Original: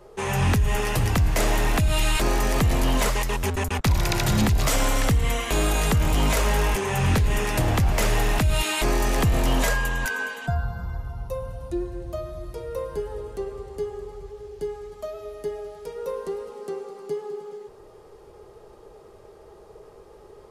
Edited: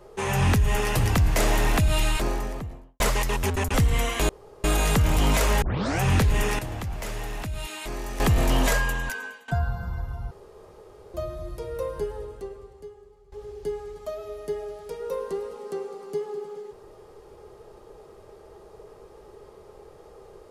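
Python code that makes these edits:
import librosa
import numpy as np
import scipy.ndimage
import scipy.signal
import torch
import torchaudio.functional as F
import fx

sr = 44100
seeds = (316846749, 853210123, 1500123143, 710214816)

y = fx.studio_fade_out(x, sr, start_s=1.81, length_s=1.19)
y = fx.edit(y, sr, fx.cut(start_s=3.74, length_s=1.31),
    fx.insert_room_tone(at_s=5.6, length_s=0.35),
    fx.tape_start(start_s=6.58, length_s=0.4),
    fx.clip_gain(start_s=7.55, length_s=1.61, db=-11.0),
    fx.fade_out_to(start_s=9.76, length_s=0.68, floor_db=-20.0),
    fx.room_tone_fill(start_s=11.27, length_s=0.83),
    fx.fade_out_to(start_s=12.98, length_s=1.3, curve='qua', floor_db=-18.0), tone=tone)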